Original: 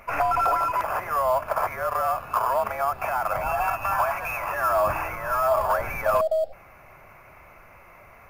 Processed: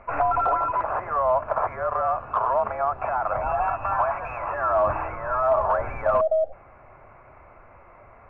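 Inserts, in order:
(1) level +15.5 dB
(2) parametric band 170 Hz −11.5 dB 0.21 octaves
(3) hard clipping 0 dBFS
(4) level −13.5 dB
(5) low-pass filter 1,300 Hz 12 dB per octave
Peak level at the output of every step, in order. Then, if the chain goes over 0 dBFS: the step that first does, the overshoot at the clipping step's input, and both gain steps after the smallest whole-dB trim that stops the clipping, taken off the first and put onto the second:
+3.5, +3.5, 0.0, −13.5, −13.0 dBFS
step 1, 3.5 dB
step 1 +11.5 dB, step 4 −9.5 dB

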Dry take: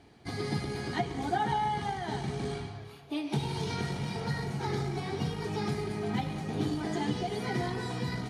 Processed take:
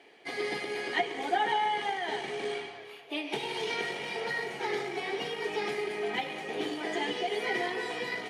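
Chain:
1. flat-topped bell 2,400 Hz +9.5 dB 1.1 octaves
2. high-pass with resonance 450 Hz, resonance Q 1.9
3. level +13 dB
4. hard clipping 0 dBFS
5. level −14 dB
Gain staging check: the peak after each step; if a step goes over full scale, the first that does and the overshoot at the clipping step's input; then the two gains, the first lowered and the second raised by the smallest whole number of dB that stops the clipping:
−14.0, −15.0, −2.0, −2.0, −16.0 dBFS
no step passes full scale

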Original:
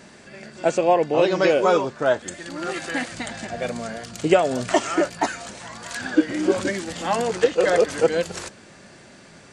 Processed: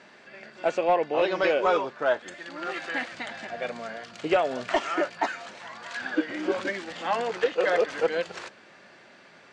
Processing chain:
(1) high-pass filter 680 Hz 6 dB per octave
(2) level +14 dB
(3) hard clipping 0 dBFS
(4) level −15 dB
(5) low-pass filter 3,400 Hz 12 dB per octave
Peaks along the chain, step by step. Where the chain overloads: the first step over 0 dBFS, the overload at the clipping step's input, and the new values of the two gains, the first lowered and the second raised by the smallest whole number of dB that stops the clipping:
−6.5, +7.5, 0.0, −15.0, −14.5 dBFS
step 2, 7.5 dB
step 2 +6 dB, step 4 −7 dB

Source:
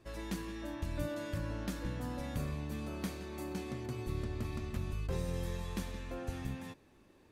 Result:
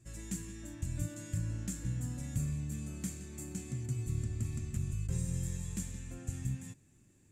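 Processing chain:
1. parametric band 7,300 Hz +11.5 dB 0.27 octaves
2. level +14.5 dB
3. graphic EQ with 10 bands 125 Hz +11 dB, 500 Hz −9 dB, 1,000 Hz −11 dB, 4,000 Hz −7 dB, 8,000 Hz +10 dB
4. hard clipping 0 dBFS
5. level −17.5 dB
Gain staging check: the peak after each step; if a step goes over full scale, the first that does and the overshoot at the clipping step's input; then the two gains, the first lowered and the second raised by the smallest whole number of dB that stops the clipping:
−24.5, −10.0, −5.5, −5.5, −23.0 dBFS
no step passes full scale

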